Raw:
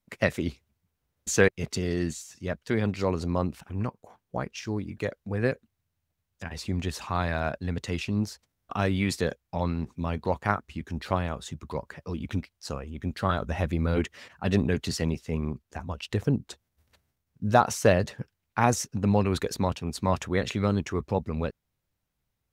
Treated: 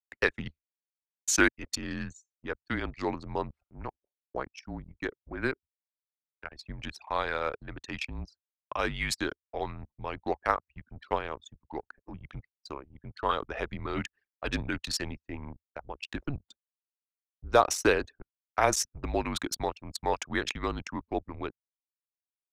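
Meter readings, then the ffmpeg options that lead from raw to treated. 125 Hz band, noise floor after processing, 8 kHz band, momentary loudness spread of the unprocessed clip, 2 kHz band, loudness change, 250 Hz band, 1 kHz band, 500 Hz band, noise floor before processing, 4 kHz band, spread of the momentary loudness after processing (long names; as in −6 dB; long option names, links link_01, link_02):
−12.5 dB, below −85 dBFS, +1.5 dB, 13 LU, +0.5 dB, −3.5 dB, −7.5 dB, −1.5 dB, −4.0 dB, −81 dBFS, +0.5 dB, 18 LU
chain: -af "anlmdn=10,highpass=frequency=980:poles=1,agate=range=-33dB:threshold=-52dB:ratio=3:detection=peak,afreqshift=-140,volume=3dB"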